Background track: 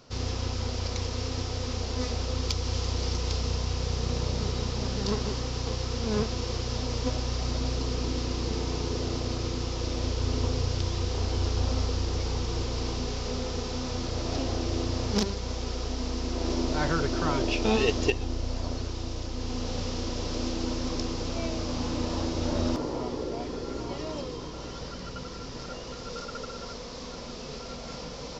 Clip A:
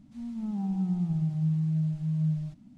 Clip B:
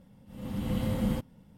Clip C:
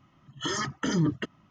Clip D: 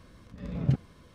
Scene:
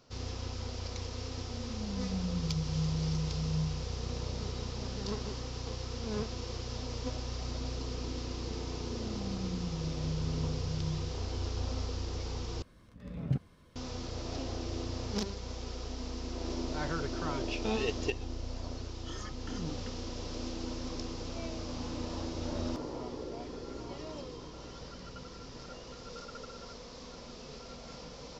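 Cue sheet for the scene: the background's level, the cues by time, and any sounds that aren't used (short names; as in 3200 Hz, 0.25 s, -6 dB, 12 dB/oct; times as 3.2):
background track -8 dB
1.34 add A -16.5 dB + tone controls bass +12 dB, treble +6 dB
8.63 add A -10 dB
12.62 replace with D -6 dB
18.64 add C -15.5 dB + notch 1900 Hz, Q 14
not used: B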